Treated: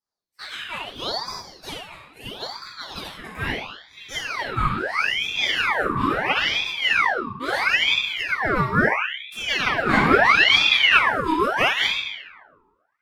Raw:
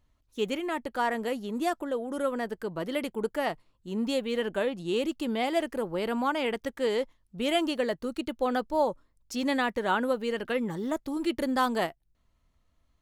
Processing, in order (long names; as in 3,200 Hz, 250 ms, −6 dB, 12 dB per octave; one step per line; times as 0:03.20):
0:09.89–0:11.04: mid-hump overdrive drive 22 dB, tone 3,200 Hz, clips at −14 dBFS
high-pass filter sweep 1,900 Hz → 370 Hz, 0:02.01–0:05.73
noise gate −44 dBFS, range −12 dB
Butterworth band-reject 5,400 Hz, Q 5.6
rectangular room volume 380 cubic metres, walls mixed, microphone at 5.1 metres
ring modulator whose carrier an LFO sweeps 1,800 Hz, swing 65%, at 0.75 Hz
level −6.5 dB